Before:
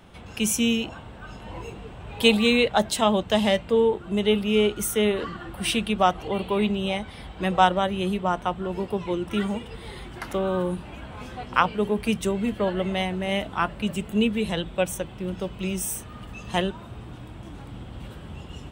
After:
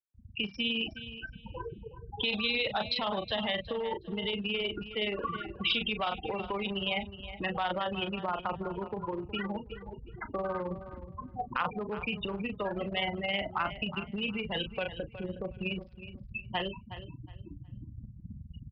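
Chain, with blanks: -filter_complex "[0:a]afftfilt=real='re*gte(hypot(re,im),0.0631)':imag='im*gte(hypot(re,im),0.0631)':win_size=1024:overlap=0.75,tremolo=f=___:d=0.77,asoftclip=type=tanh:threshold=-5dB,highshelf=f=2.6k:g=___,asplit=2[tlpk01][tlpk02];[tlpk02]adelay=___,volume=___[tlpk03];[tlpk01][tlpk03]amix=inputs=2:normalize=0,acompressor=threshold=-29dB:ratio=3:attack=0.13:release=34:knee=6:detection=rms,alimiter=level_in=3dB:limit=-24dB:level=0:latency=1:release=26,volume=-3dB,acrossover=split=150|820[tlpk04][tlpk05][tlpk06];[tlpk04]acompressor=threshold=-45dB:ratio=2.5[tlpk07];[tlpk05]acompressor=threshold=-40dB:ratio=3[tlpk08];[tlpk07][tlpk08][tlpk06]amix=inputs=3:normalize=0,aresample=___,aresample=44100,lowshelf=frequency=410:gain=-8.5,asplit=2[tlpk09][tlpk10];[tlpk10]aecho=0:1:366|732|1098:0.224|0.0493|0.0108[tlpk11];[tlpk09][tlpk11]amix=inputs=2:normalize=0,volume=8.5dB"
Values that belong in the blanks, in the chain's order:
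19, 4, 35, -13dB, 11025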